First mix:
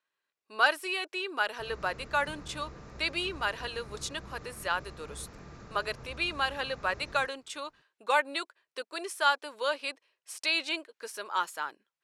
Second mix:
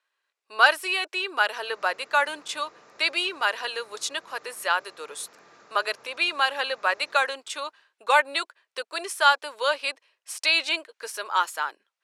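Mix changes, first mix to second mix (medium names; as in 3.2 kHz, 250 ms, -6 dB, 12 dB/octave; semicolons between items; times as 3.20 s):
speech +7.0 dB; master: add high-pass 490 Hz 12 dB/octave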